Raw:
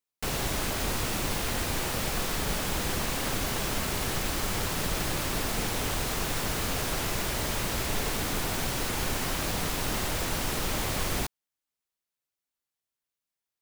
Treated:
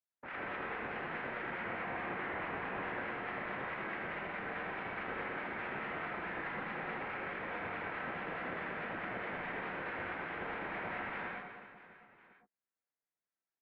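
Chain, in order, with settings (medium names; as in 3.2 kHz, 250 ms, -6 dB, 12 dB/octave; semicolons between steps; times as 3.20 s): noise-vocoded speech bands 1; ring modulator 1.3 kHz; 1.60–2.88 s: Schmitt trigger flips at -46 dBFS; harmonic tremolo 4.7 Hz, depth 100%, crossover 1.2 kHz; on a send: reverse bouncing-ball echo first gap 80 ms, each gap 1.5×, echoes 5; on the sum: gated-style reverb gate 150 ms rising, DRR 1 dB; mistuned SSB -220 Hz 370–2300 Hz; trim +1.5 dB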